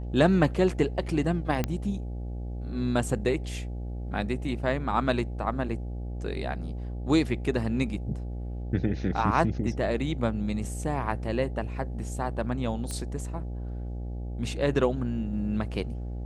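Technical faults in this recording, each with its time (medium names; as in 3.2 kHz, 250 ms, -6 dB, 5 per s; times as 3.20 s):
buzz 60 Hz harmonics 14 -34 dBFS
1.64 s: pop -13 dBFS
12.91 s: pop -20 dBFS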